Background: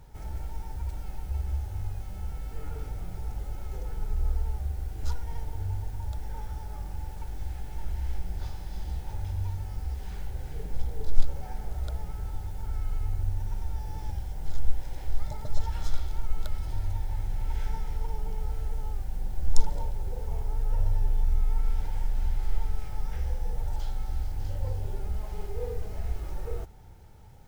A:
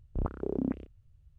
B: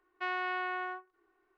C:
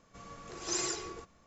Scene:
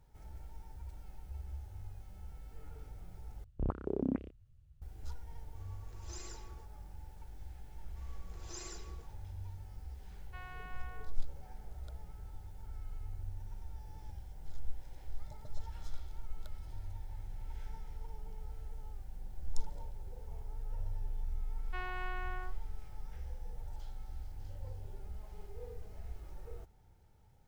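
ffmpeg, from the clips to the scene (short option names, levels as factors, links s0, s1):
-filter_complex "[3:a]asplit=2[s0][s1];[2:a]asplit=2[s2][s3];[0:a]volume=0.211[s4];[s2]highpass=f=510:w=0.5412,highpass=f=510:w=1.3066[s5];[s4]asplit=2[s6][s7];[s6]atrim=end=3.444[s8];[1:a]atrim=end=1.38,asetpts=PTS-STARTPTS,volume=0.75[s9];[s7]atrim=start=4.816[s10];[s0]atrim=end=1.46,asetpts=PTS-STARTPTS,volume=0.15,afade=t=in:d=0.004:c=hsin,afade=t=out:st=1.456:d=0.004:c=hsin,adelay=238581S[s11];[s1]atrim=end=1.46,asetpts=PTS-STARTPTS,volume=0.2,afade=t=in:d=0.004:c=hsin,afade=t=out:st=1.456:d=0.004:c=hsin,adelay=7820[s12];[s5]atrim=end=1.57,asetpts=PTS-STARTPTS,volume=0.158,afade=t=in:d=0.004:c=hsin,afade=t=out:st=1.566:d=0.004:c=hsin,adelay=10120[s13];[s3]atrim=end=1.57,asetpts=PTS-STARTPTS,volume=0.398,afade=t=in:d=0.004:c=hsin,afade=t=out:st=1.566:d=0.004:c=hsin,adelay=21520[s14];[s8][s9]acrossfade=d=0.004:c1=hsin:c2=hsin[s15];[s15][s10]acrossfade=d=0.004:c1=hsin:c2=hsin[s16];[s16][s11][s12][s13][s14]amix=inputs=5:normalize=0"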